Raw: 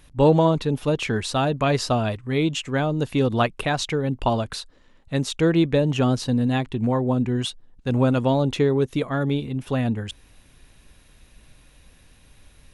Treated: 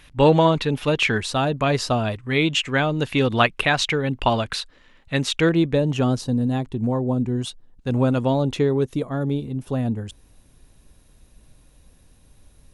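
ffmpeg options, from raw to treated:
ffmpeg -i in.wav -af "asetnsamples=nb_out_samples=441:pad=0,asendcmd='1.18 equalizer g 1.5;2.27 equalizer g 9;5.49 equalizer g -2;6.21 equalizer g -9.5;7.47 equalizer g -2;8.94 equalizer g -9.5',equalizer=frequency=2300:width_type=o:width=2:gain=9.5" out.wav

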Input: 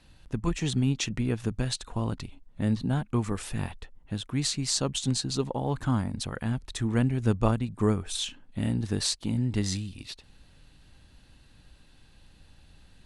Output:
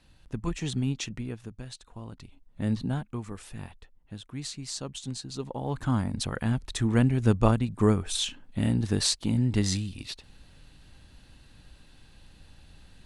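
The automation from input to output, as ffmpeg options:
ffmpeg -i in.wav -af "volume=19.5dB,afade=type=out:start_time=0.9:duration=0.59:silence=0.354813,afade=type=in:start_time=2.12:duration=0.67:silence=0.266073,afade=type=out:start_time=2.79:duration=0.38:silence=0.398107,afade=type=in:start_time=5.31:duration=0.94:silence=0.281838" out.wav

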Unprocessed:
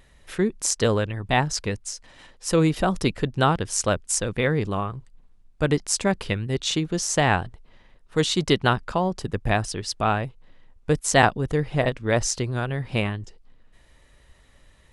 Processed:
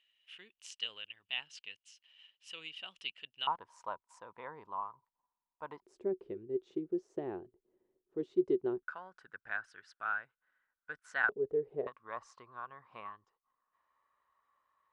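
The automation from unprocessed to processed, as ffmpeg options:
ffmpeg -i in.wav -af "asetnsamples=nb_out_samples=441:pad=0,asendcmd='3.47 bandpass f 970;5.82 bandpass f 370;8.83 bandpass f 1500;11.29 bandpass f 420;11.87 bandpass f 1100',bandpass=frequency=2900:width_type=q:width=12:csg=0" out.wav

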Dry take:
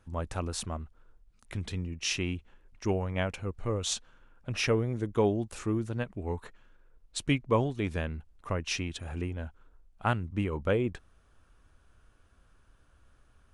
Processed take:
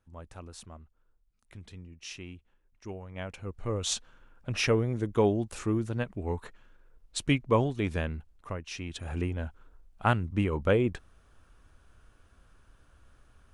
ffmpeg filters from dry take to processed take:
ffmpeg -i in.wav -af "volume=13.5dB,afade=type=in:start_time=3.08:duration=0.88:silence=0.223872,afade=type=out:start_time=8.1:duration=0.61:silence=0.298538,afade=type=in:start_time=8.71:duration=0.44:silence=0.251189" out.wav

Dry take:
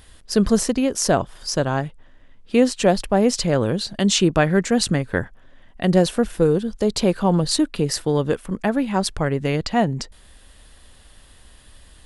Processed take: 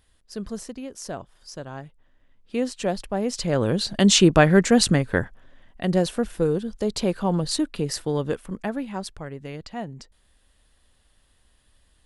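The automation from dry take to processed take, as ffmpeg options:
ffmpeg -i in.wav -af "volume=2dB,afade=type=in:start_time=1.63:duration=1.15:silence=0.446684,afade=type=in:start_time=3.3:duration=0.68:silence=0.298538,afade=type=out:start_time=4.71:duration=1.12:silence=0.446684,afade=type=out:start_time=8.36:duration=0.85:silence=0.354813" out.wav

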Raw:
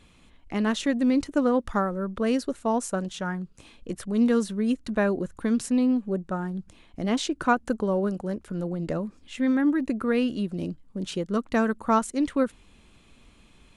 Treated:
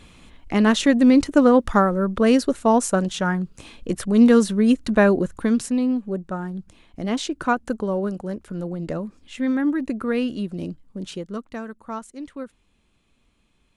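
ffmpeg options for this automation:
ffmpeg -i in.wav -af "volume=8dB,afade=type=out:start_time=5.14:duration=0.62:silence=0.446684,afade=type=out:start_time=10.86:duration=0.74:silence=0.281838" out.wav

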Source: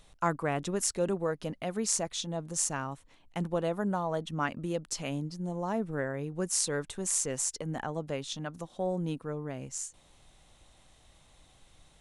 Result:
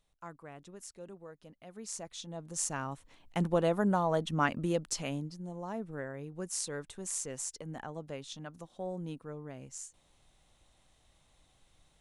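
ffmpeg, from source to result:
ffmpeg -i in.wav -af "volume=2.5dB,afade=type=in:start_time=1.6:duration=0.81:silence=0.281838,afade=type=in:start_time=2.41:duration=1.01:silence=0.334965,afade=type=out:start_time=4.67:duration=0.76:silence=0.334965" out.wav

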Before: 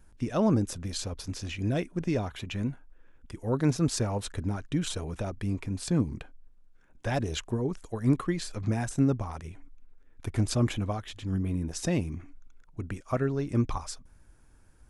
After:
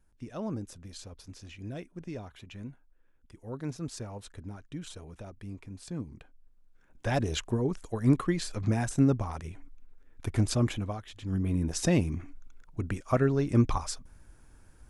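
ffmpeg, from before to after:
ffmpeg -i in.wav -af "volume=10dB,afade=type=in:start_time=6.15:duration=1.02:silence=0.251189,afade=type=out:start_time=10.35:duration=0.74:silence=0.446684,afade=type=in:start_time=11.09:duration=0.57:silence=0.354813" out.wav

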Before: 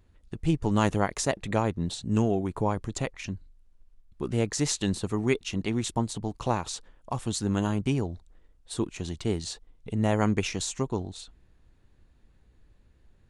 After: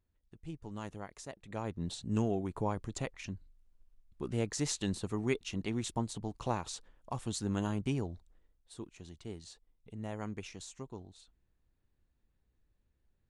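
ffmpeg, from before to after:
ffmpeg -i in.wav -af "volume=-7dB,afade=type=in:start_time=1.46:duration=0.42:silence=0.251189,afade=type=out:start_time=8.13:duration=0.6:silence=0.354813" out.wav

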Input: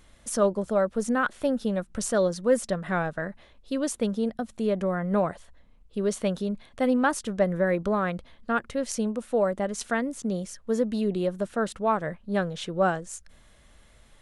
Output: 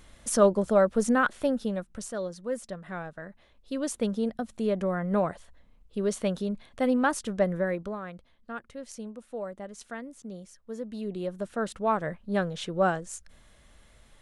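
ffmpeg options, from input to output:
ffmpeg -i in.wav -af "volume=22dB,afade=type=out:start_time=1.03:duration=1.07:silence=0.237137,afade=type=in:start_time=3.24:duration=0.8:silence=0.375837,afade=type=out:start_time=7.46:duration=0.53:silence=0.298538,afade=type=in:start_time=10.78:duration=1.22:silence=0.281838" out.wav

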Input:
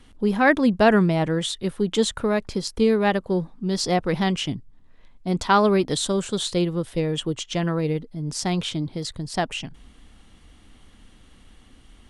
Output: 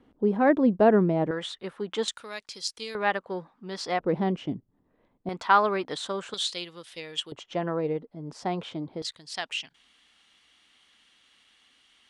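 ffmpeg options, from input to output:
ffmpeg -i in.wav -af "asetnsamples=nb_out_samples=441:pad=0,asendcmd='1.31 bandpass f 1200;2.08 bandpass f 5000;2.95 bandpass f 1400;4 bandpass f 400;5.29 bandpass f 1300;6.34 bandpass f 3600;7.32 bandpass f 680;9.02 bandpass f 3300',bandpass=frequency=410:width_type=q:width=0.85:csg=0" out.wav

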